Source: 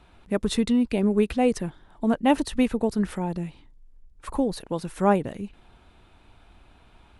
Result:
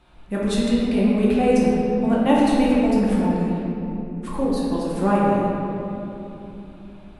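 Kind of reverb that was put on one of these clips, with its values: simulated room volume 140 m³, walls hard, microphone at 0.9 m; trim -3 dB

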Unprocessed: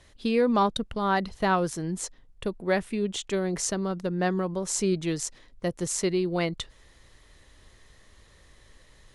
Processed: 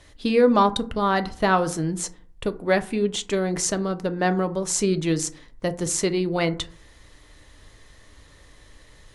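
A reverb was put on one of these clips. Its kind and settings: FDN reverb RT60 0.47 s, low-frequency decay 1.2×, high-frequency decay 0.4×, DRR 9 dB; trim +4.5 dB

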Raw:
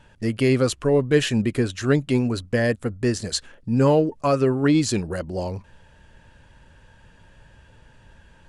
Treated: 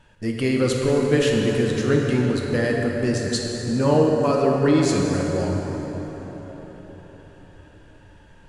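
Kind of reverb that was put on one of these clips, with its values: plate-style reverb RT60 4.9 s, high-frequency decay 0.55×, DRR -1 dB; trim -2.5 dB

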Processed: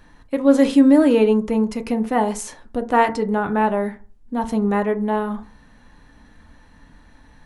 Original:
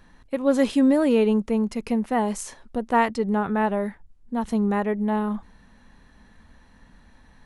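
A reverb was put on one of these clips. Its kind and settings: FDN reverb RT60 0.39 s, low-frequency decay 1.05×, high-frequency decay 0.4×, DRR 7 dB; trim +3 dB

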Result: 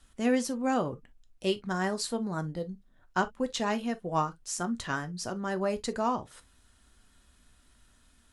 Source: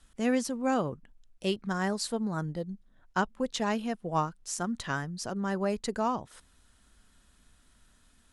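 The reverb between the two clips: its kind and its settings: gated-style reverb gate 80 ms falling, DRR 8.5 dB

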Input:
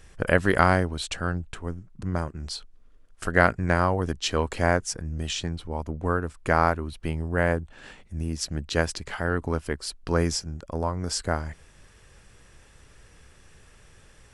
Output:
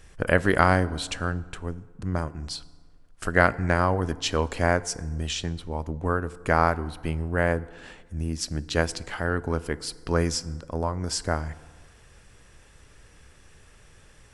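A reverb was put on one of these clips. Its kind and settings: FDN reverb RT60 1.6 s, low-frequency decay 1×, high-frequency decay 0.55×, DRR 17 dB

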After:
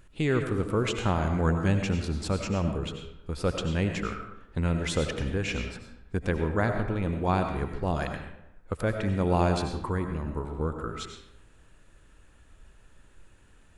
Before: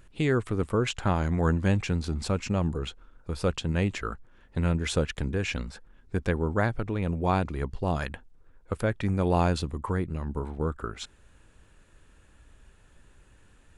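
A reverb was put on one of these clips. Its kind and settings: algorithmic reverb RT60 0.84 s, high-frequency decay 0.65×, pre-delay 55 ms, DRR 5 dB; trim -1 dB

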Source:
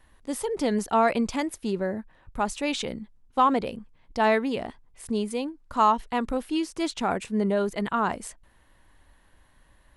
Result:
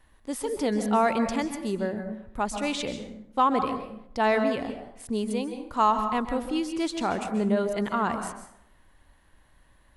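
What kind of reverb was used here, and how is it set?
plate-style reverb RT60 0.74 s, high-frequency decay 0.6×, pre-delay 120 ms, DRR 7.5 dB; trim -1.5 dB

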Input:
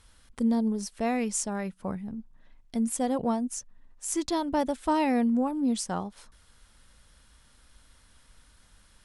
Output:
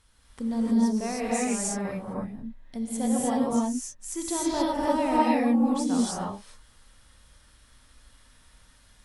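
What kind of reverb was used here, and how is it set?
gated-style reverb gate 340 ms rising, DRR -6.5 dB; trim -5 dB

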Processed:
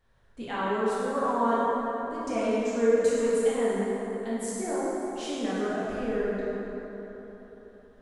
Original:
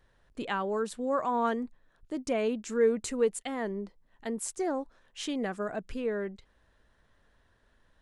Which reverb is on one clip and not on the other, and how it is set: plate-style reverb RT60 4 s, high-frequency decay 0.5×, DRR -9.5 dB; trim -6.5 dB

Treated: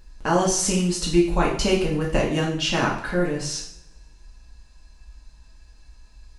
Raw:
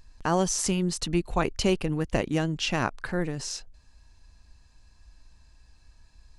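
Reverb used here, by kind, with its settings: two-slope reverb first 0.55 s, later 1.8 s, from -25 dB, DRR -4 dB

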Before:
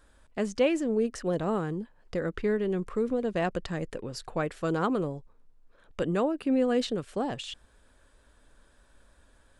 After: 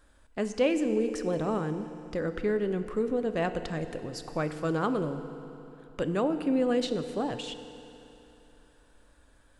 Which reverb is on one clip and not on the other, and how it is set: FDN reverb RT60 3.1 s, high-frequency decay 0.9×, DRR 9 dB; trim -1 dB

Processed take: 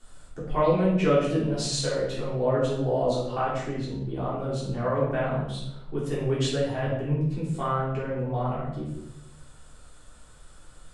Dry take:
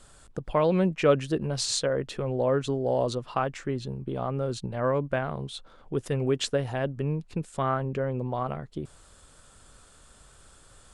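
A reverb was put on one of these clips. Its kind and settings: simulated room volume 250 m³, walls mixed, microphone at 3.4 m; trim -9.5 dB

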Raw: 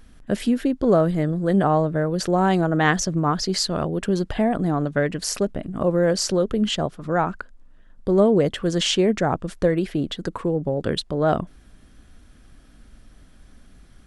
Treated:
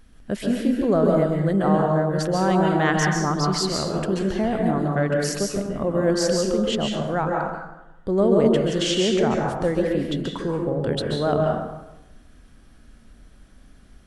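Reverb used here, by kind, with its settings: plate-style reverb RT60 0.98 s, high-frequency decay 0.6×, pre-delay 120 ms, DRR -0.5 dB; trim -3.5 dB

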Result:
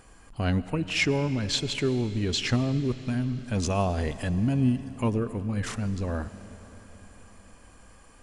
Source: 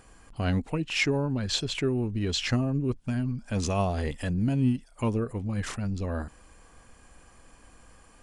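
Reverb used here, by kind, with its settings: algorithmic reverb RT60 4.4 s, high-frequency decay 0.95×, pre-delay 60 ms, DRR 13.5 dB; trim +1 dB

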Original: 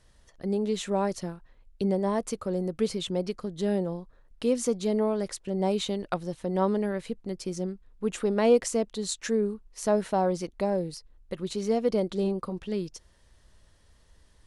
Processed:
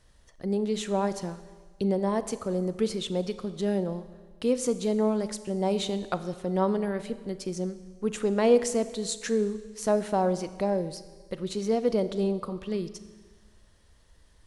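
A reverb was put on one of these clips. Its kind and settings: Schroeder reverb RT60 1.5 s, combs from 29 ms, DRR 12.5 dB

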